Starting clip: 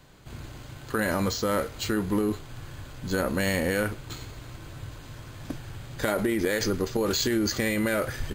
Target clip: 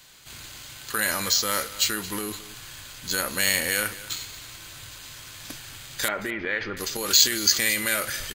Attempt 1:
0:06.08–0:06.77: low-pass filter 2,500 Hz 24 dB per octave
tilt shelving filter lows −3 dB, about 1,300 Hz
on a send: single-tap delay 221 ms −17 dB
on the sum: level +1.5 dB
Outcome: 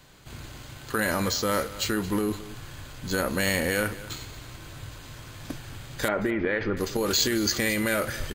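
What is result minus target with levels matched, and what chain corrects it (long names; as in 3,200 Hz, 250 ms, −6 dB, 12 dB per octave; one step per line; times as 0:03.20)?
1,000 Hz band +4.0 dB
0:06.08–0:06.77: low-pass filter 2,500 Hz 24 dB per octave
tilt shelving filter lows −11.5 dB, about 1,300 Hz
on a send: single-tap delay 221 ms −17 dB
on the sum: level +1.5 dB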